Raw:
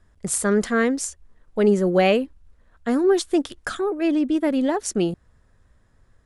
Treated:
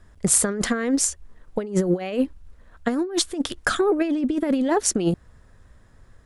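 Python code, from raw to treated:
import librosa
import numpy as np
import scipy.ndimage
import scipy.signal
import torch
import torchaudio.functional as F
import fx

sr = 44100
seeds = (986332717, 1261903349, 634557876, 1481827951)

y = fx.over_compress(x, sr, threshold_db=-23.0, ratio=-0.5)
y = y * librosa.db_to_amplitude(2.5)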